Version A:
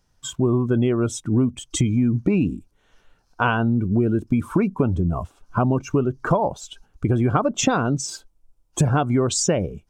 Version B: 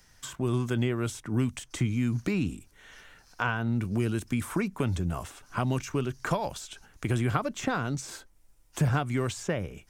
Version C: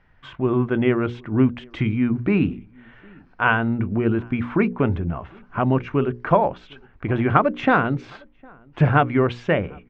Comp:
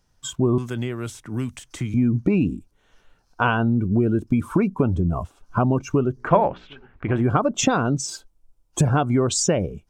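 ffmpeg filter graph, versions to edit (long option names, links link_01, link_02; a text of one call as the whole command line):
ffmpeg -i take0.wav -i take1.wav -i take2.wav -filter_complex "[0:a]asplit=3[link_01][link_02][link_03];[link_01]atrim=end=0.582[link_04];[1:a]atrim=start=0.578:end=1.942[link_05];[link_02]atrim=start=1.938:end=6.31[link_06];[2:a]atrim=start=6.15:end=7.28[link_07];[link_03]atrim=start=7.12[link_08];[link_04][link_05]acrossfade=duration=0.004:curve1=hsin:curve2=hsin[link_09];[link_09][link_06]acrossfade=duration=0.004:curve1=hsin:curve2=hsin[link_10];[link_10][link_07]acrossfade=duration=0.16:curve1=tri:curve2=tri[link_11];[link_11][link_08]acrossfade=duration=0.16:curve1=tri:curve2=tri" out.wav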